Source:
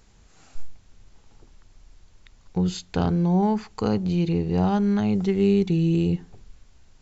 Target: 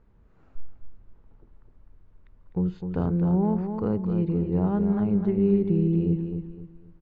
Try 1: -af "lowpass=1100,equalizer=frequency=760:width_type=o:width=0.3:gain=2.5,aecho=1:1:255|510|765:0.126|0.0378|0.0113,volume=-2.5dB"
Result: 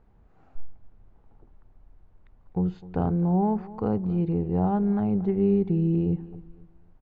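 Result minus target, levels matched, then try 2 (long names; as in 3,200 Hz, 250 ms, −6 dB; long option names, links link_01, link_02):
echo-to-direct −11 dB; 1,000 Hz band +6.0 dB
-af "lowpass=1100,equalizer=frequency=760:width_type=o:width=0.3:gain=-7.5,aecho=1:1:255|510|765|1020:0.447|0.134|0.0402|0.0121,volume=-2.5dB"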